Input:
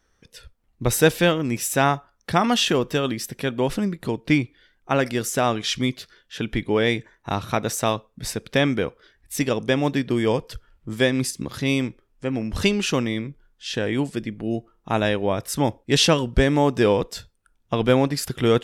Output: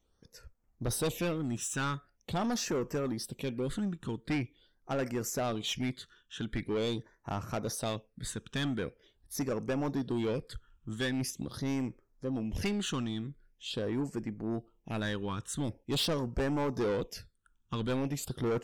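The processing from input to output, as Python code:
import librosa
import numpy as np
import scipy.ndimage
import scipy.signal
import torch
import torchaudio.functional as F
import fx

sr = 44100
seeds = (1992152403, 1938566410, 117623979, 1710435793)

y = fx.phaser_stages(x, sr, stages=8, low_hz=620.0, high_hz=3700.0, hz=0.44, feedback_pct=5)
y = 10.0 ** (-21.0 / 20.0) * np.tanh(y / 10.0 ** (-21.0 / 20.0))
y = F.gain(torch.from_numpy(y), -6.0).numpy()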